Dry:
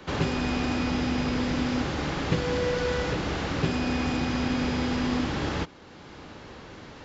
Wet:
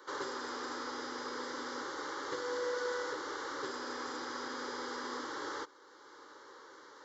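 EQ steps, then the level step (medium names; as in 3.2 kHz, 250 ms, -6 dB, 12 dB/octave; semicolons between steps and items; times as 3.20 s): high-pass 510 Hz 12 dB/octave; static phaser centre 690 Hz, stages 6; -3.5 dB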